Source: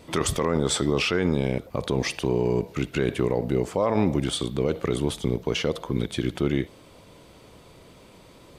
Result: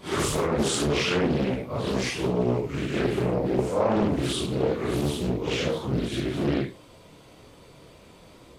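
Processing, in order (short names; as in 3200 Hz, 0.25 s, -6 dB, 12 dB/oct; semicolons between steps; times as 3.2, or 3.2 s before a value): phase scrambler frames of 0.2 s; Doppler distortion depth 0.73 ms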